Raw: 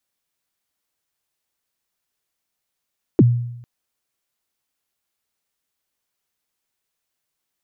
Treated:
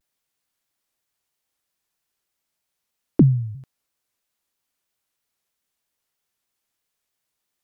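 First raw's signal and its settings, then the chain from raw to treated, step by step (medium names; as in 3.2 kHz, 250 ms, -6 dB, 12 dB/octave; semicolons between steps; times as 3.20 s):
kick drum length 0.45 s, from 420 Hz, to 120 Hz, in 35 ms, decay 0.82 s, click off, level -6 dB
vibrato with a chosen wave saw down 3.1 Hz, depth 250 cents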